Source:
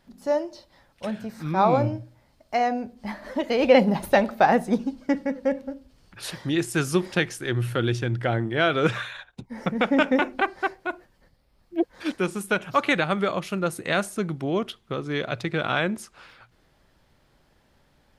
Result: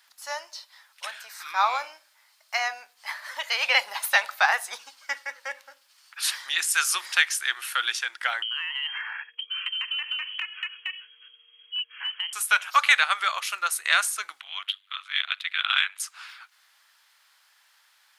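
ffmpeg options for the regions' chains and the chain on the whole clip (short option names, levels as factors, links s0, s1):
-filter_complex "[0:a]asettb=1/sr,asplit=3[s0][s1][s2];[s0]atrim=end=8.424[s3];[s1]atrim=start=8.42:end=12.33,asetpts=PTS-STARTPTS,afade=t=in:d=0.004:c=qsin,afade=t=out:st=3.906:d=0.004:c=qsin,lowpass=f=2800:t=q:w=0.5098,lowpass=f=2800:t=q:w=0.6013,lowpass=f=2800:t=q:w=0.9,lowpass=f=2800:t=q:w=2.563,afreqshift=-3300,acompressor=threshold=0.02:ratio=10:attack=3.2:release=140:knee=1:detection=peak,aeval=exprs='val(0)+0.00141*sin(2*PI*470*n/s)':c=same[s4];[s2]atrim=start=12.326[s5];[s3][s4]acrossfade=d=0.004:c1=hsin:c2=qsin[s6];[s6][s5]acrossfade=d=0.004:c1=qsin:c2=hsin,asettb=1/sr,asplit=3[s7][s8][s9];[s7]atrim=end=14.404[s10];[s8]atrim=start=14.4:end=16,asetpts=PTS-STARTPTS,afade=t=in:d=0.004:c=qsin,afade=t=out:st=1.596:d=0.004:c=qsin,highpass=1400,highshelf=f=4300:t=q:w=3:g=-8.5,tremolo=f=97:d=0.824[s11];[s9]atrim=start=15.996[s12];[s10][s11]acrossfade=d=0.004:c1=hsin:c2=qsin[s13];[s13][s12]acrossfade=d=0.004:c1=qsin:c2=hsin,highpass=f=1100:w=0.5412,highpass=f=1100:w=1.3066,highshelf=f=4200:g=6.5,acontrast=33"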